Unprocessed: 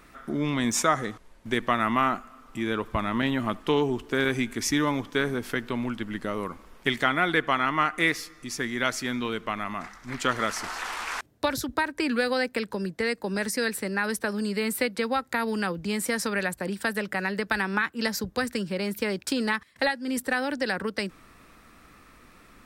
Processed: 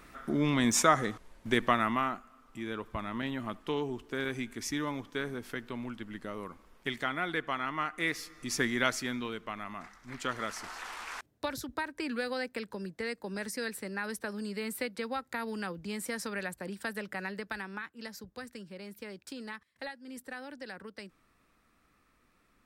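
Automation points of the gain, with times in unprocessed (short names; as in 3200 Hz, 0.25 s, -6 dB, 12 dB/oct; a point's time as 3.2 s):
1.66 s -1 dB
2.15 s -9.5 dB
7.98 s -9.5 dB
8.58 s +1 dB
9.4 s -9 dB
17.25 s -9 dB
17.91 s -16 dB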